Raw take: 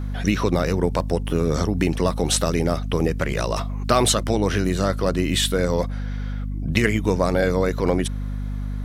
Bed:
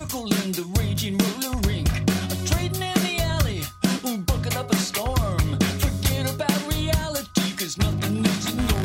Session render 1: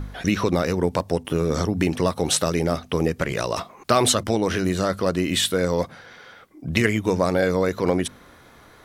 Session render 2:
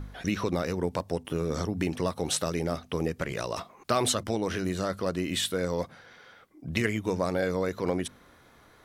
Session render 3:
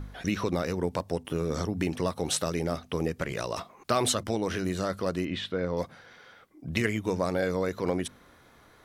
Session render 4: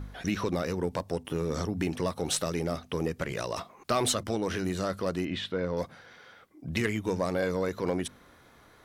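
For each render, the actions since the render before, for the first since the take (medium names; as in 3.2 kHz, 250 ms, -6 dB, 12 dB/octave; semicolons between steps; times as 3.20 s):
de-hum 50 Hz, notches 5
trim -7.5 dB
5.25–5.77 s: distance through air 250 m
single-diode clipper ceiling -13 dBFS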